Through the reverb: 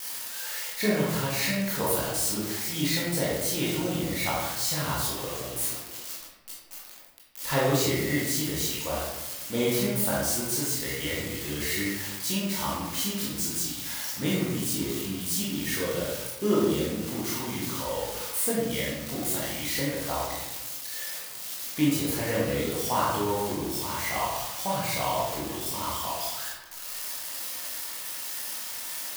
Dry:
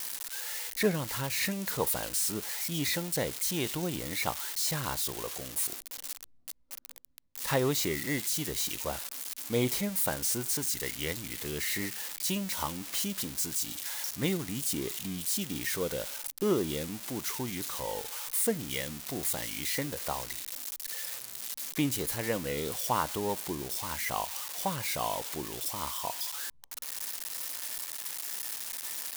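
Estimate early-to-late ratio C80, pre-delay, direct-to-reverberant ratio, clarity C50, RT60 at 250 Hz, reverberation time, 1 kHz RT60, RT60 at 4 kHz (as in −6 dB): 2.5 dB, 17 ms, −6.5 dB, −0.5 dB, 1.3 s, 1.0 s, 1.0 s, 0.60 s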